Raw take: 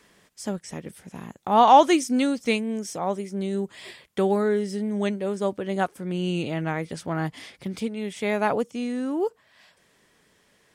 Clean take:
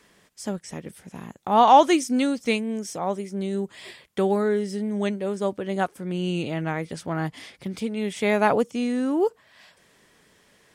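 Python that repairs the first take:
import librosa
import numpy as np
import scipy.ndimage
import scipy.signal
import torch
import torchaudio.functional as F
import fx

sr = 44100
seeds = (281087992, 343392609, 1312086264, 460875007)

y = fx.gain(x, sr, db=fx.steps((0.0, 0.0), (7.88, 3.5)))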